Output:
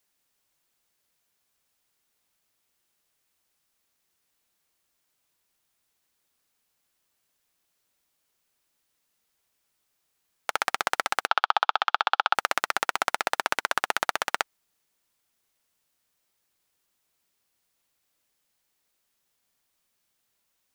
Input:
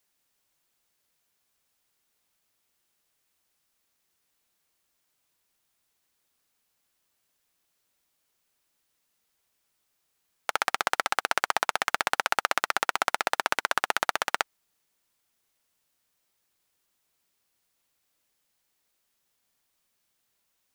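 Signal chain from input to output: 11.27–12.35 speaker cabinet 480–4400 Hz, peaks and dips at 540 Hz -4 dB, 830 Hz +6 dB, 1300 Hz +7 dB, 2000 Hz -9 dB, 3400 Hz +7 dB

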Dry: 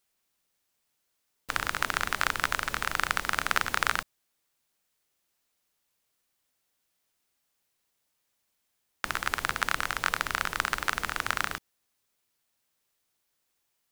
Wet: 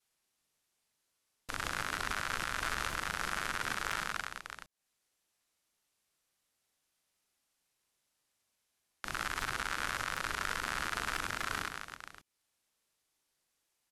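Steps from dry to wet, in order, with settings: upward compressor, threshold -50 dBFS; expander -51 dBFS; elliptic low-pass 12000 Hz, stop band 70 dB; reverse bouncing-ball echo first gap 40 ms, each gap 1.6×, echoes 5; limiter -20 dBFS, peak gain reduction 15.5 dB; crackling interface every 0.25 s, samples 128, repeat, from 0.91; gain +1.5 dB

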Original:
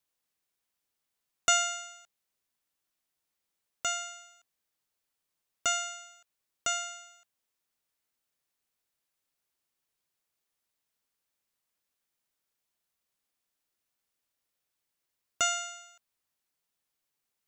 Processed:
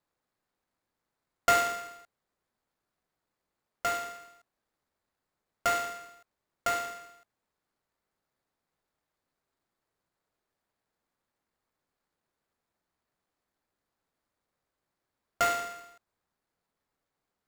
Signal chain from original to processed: median filter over 15 samples; gain +7.5 dB

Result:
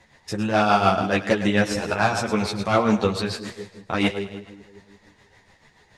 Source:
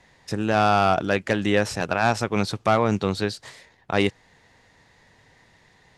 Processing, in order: split-band echo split 500 Hz, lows 0.177 s, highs 0.105 s, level -10 dB; tremolo 6.9 Hz, depth 56%; ensemble effect; gain +6 dB

